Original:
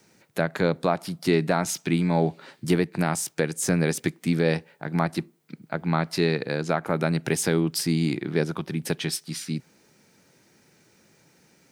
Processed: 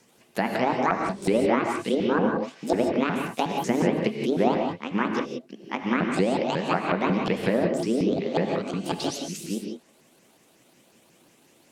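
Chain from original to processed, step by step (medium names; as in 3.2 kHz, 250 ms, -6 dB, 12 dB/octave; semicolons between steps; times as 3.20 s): sawtooth pitch modulation +12 st, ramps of 182 ms; low-pass that closes with the level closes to 2 kHz, closed at -20 dBFS; gated-style reverb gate 200 ms rising, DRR 2.5 dB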